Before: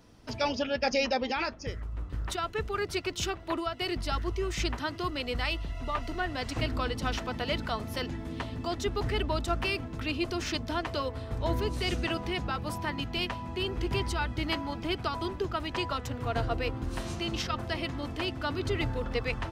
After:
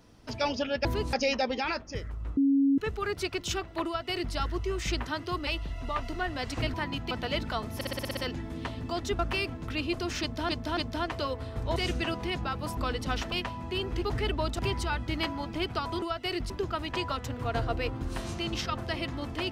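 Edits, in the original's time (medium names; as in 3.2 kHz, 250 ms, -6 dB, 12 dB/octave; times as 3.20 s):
2.09–2.50 s: bleep 276 Hz -20 dBFS
3.58–4.06 s: copy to 15.31 s
5.19–5.46 s: delete
6.73–7.28 s: swap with 12.80–13.17 s
7.92 s: stutter 0.06 s, 8 plays
8.94–9.50 s: move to 13.88 s
10.52–10.80 s: loop, 3 plays
11.51–11.79 s: move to 0.85 s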